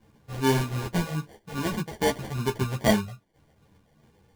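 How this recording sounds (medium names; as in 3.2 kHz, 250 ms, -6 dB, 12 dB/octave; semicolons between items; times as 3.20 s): a quantiser's noise floor 12-bit, dither triangular; phasing stages 4, 2.5 Hz, lowest notch 300–3400 Hz; aliases and images of a low sample rate 1.3 kHz, jitter 0%; a shimmering, thickened sound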